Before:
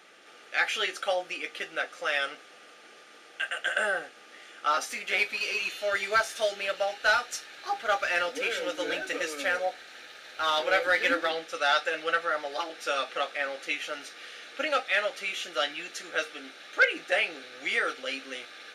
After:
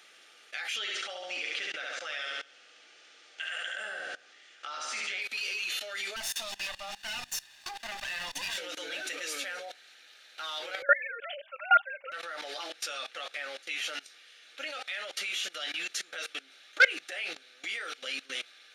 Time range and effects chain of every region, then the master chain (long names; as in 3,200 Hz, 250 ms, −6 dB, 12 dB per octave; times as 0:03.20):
0:00.76–0:05.22: low-pass filter 7,600 Hz 24 dB per octave + repeating echo 70 ms, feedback 47%, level −4.5 dB
0:06.16–0:08.58: lower of the sound and its delayed copy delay 1.1 ms + mains-hum notches 50/100/150/200/250/300 Hz
0:10.82–0:12.12: three sine waves on the formant tracks + comb filter 5 ms, depth 49%
whole clip: output level in coarse steps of 21 dB; drawn EQ curve 160 Hz 0 dB, 1,100 Hz +5 dB, 3,300 Hz +13 dB; level −3.5 dB